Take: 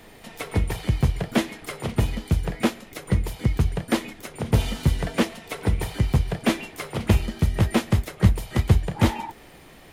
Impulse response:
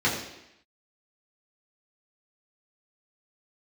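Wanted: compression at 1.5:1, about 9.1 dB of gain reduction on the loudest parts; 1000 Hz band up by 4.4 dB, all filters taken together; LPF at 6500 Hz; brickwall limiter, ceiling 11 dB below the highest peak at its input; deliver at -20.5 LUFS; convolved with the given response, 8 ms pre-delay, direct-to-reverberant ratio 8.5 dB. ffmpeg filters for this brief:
-filter_complex "[0:a]lowpass=6.5k,equalizer=f=1k:t=o:g=5.5,acompressor=threshold=-37dB:ratio=1.5,alimiter=limit=-22.5dB:level=0:latency=1,asplit=2[a][b];[1:a]atrim=start_sample=2205,adelay=8[c];[b][c]afir=irnorm=-1:irlink=0,volume=-23dB[d];[a][d]amix=inputs=2:normalize=0,volume=14dB"

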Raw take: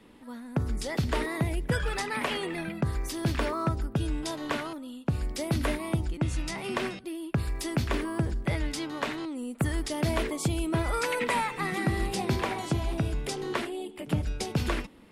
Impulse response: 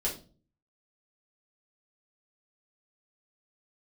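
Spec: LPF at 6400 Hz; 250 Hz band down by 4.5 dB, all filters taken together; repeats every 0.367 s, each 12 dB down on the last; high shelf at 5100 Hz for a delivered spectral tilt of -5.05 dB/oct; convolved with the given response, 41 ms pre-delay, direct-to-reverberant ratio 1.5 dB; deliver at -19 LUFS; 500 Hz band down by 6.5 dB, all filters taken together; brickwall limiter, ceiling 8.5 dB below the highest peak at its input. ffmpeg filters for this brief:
-filter_complex "[0:a]lowpass=6.4k,equalizer=f=250:t=o:g=-4,equalizer=f=500:t=o:g=-7.5,highshelf=f=5.1k:g=-6.5,alimiter=level_in=1dB:limit=-24dB:level=0:latency=1,volume=-1dB,aecho=1:1:367|734|1101:0.251|0.0628|0.0157,asplit=2[a][b];[1:a]atrim=start_sample=2205,adelay=41[c];[b][c]afir=irnorm=-1:irlink=0,volume=-7dB[d];[a][d]amix=inputs=2:normalize=0,volume=13dB"

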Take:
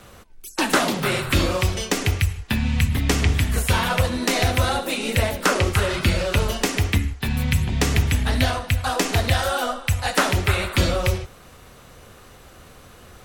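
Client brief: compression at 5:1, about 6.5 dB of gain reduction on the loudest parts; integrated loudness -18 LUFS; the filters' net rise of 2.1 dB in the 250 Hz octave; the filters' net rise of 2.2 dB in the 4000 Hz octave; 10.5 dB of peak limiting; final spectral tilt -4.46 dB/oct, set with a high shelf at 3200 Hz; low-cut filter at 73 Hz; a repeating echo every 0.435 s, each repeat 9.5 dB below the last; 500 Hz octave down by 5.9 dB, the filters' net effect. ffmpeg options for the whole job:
-af "highpass=73,equalizer=f=250:t=o:g=5,equalizer=f=500:t=o:g=-9,highshelf=f=3.2k:g=-6.5,equalizer=f=4k:t=o:g=7.5,acompressor=threshold=-22dB:ratio=5,alimiter=limit=-17dB:level=0:latency=1,aecho=1:1:435|870|1305|1740:0.335|0.111|0.0365|0.012,volume=10dB"

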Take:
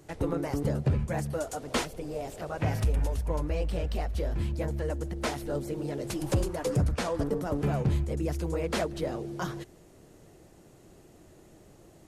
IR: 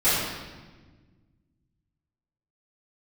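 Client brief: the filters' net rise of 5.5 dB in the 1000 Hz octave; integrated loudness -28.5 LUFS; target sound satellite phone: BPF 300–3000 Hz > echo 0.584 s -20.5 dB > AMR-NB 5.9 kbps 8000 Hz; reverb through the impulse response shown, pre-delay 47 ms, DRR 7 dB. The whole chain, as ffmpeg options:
-filter_complex "[0:a]equalizer=f=1k:t=o:g=7.5,asplit=2[a][b];[1:a]atrim=start_sample=2205,adelay=47[c];[b][c]afir=irnorm=-1:irlink=0,volume=-24dB[d];[a][d]amix=inputs=2:normalize=0,highpass=300,lowpass=3k,aecho=1:1:584:0.0944,volume=6dB" -ar 8000 -c:a libopencore_amrnb -b:a 5900

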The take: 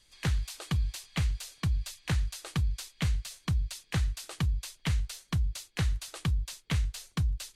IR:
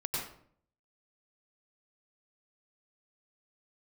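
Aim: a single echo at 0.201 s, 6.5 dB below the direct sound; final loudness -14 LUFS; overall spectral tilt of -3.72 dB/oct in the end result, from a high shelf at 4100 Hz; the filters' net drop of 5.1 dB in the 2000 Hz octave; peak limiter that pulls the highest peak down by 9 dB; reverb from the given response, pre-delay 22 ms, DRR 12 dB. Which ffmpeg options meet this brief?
-filter_complex "[0:a]equalizer=f=2k:t=o:g=-8,highshelf=f=4.1k:g=6,alimiter=level_in=3.5dB:limit=-24dB:level=0:latency=1,volume=-3.5dB,aecho=1:1:201:0.473,asplit=2[a][b];[1:a]atrim=start_sample=2205,adelay=22[c];[b][c]afir=irnorm=-1:irlink=0,volume=-16.5dB[d];[a][d]amix=inputs=2:normalize=0,volume=22dB"

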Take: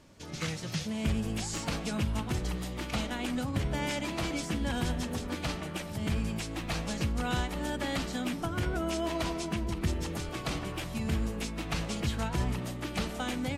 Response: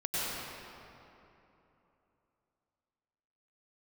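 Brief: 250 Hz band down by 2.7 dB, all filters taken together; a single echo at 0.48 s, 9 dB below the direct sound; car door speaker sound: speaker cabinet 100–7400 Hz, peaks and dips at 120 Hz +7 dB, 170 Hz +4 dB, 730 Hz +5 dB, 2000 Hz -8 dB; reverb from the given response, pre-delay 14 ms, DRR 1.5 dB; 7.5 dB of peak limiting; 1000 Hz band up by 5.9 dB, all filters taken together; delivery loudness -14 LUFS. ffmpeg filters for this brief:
-filter_complex "[0:a]equalizer=f=250:t=o:g=-6,equalizer=f=1k:t=o:g=5.5,alimiter=level_in=1.5dB:limit=-24dB:level=0:latency=1,volume=-1.5dB,aecho=1:1:480:0.355,asplit=2[a][b];[1:a]atrim=start_sample=2205,adelay=14[c];[b][c]afir=irnorm=-1:irlink=0,volume=-9.5dB[d];[a][d]amix=inputs=2:normalize=0,highpass=100,equalizer=f=120:t=q:w=4:g=7,equalizer=f=170:t=q:w=4:g=4,equalizer=f=730:t=q:w=4:g=5,equalizer=f=2k:t=q:w=4:g=-8,lowpass=f=7.4k:w=0.5412,lowpass=f=7.4k:w=1.3066,volume=18.5dB"

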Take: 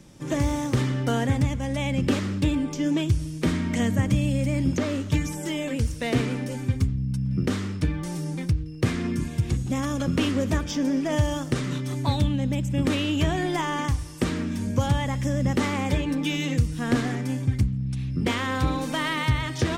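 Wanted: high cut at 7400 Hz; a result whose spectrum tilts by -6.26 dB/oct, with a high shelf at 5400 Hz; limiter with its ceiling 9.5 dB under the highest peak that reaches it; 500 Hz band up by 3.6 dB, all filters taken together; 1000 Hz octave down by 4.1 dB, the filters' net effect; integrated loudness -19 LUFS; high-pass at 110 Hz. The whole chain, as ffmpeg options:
-af "highpass=110,lowpass=7.4k,equalizer=f=500:t=o:g=6.5,equalizer=f=1k:t=o:g=-7.5,highshelf=f=5.4k:g=-5,volume=9.5dB,alimiter=limit=-9dB:level=0:latency=1"

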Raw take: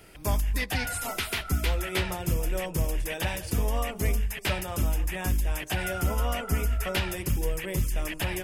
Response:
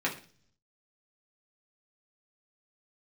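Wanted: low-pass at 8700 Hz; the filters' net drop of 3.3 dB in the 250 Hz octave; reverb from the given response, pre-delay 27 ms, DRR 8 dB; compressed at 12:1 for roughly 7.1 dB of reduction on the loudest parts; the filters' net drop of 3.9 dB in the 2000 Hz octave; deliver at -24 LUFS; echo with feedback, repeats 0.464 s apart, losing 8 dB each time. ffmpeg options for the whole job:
-filter_complex "[0:a]lowpass=8.7k,equalizer=f=250:t=o:g=-5,equalizer=f=2k:t=o:g=-5,acompressor=threshold=-28dB:ratio=12,aecho=1:1:464|928|1392|1856|2320:0.398|0.159|0.0637|0.0255|0.0102,asplit=2[a][b];[1:a]atrim=start_sample=2205,adelay=27[c];[b][c]afir=irnorm=-1:irlink=0,volume=-16.5dB[d];[a][d]amix=inputs=2:normalize=0,volume=9.5dB"

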